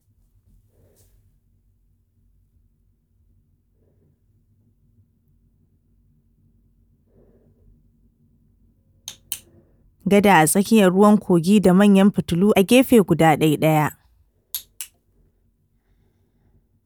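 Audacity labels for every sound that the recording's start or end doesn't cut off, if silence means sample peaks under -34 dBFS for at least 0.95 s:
9.080000	14.850000	sound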